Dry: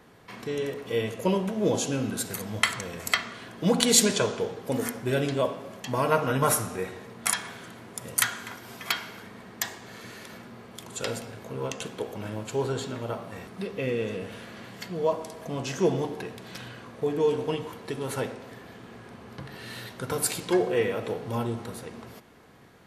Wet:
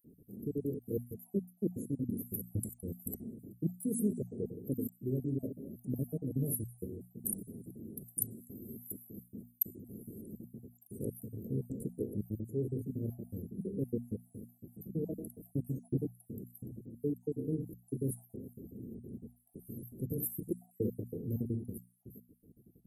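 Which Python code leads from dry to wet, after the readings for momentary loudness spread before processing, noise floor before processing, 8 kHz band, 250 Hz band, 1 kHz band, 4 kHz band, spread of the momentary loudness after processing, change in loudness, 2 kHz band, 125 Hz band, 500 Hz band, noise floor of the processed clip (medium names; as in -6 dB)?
18 LU, -47 dBFS, -16.0 dB, -5.5 dB, under -40 dB, under -40 dB, 13 LU, -11.0 dB, under -40 dB, -4.0 dB, -13.5 dB, -69 dBFS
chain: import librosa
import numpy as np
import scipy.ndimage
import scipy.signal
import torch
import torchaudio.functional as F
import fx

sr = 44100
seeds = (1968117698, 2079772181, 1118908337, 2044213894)

y = fx.spec_dropout(x, sr, seeds[0], share_pct=49)
y = scipy.signal.sosfilt(scipy.signal.cheby2(4, 60, [990.0, 5200.0], 'bandstop', fs=sr, output='sos'), y)
y = fx.high_shelf(y, sr, hz=7100.0, db=3.5)
y = fx.hum_notches(y, sr, base_hz=60, count=4)
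y = fx.rider(y, sr, range_db=4, speed_s=0.5)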